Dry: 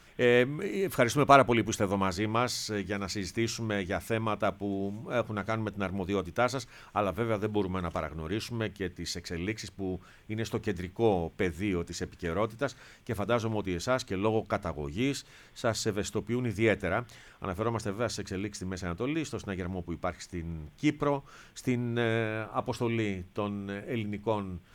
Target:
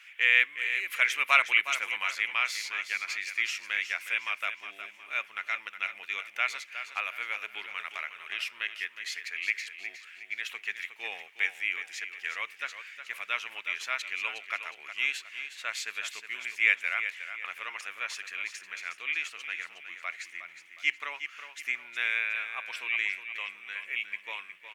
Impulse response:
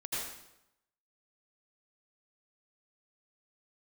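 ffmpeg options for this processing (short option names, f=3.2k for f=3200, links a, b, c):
-af "highpass=f=2.4k:t=q:w=2.3,highshelf=f=3.1k:t=q:w=1.5:g=-7,aecho=1:1:363|726|1089|1452:0.316|0.123|0.0481|0.0188,volume=4dB"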